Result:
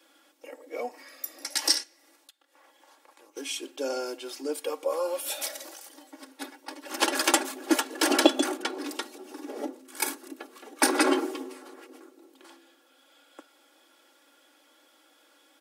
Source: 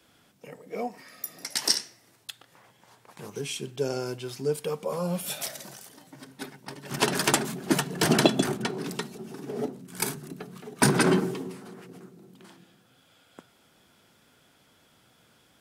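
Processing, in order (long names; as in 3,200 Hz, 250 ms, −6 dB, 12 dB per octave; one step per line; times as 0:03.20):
elliptic high-pass filter 290 Hz, stop band 40 dB
comb filter 3.6 ms, depth 69%
0:01.83–0:03.37: downward compressor 16 to 1, threshold −53 dBFS, peak gain reduction 21.5 dB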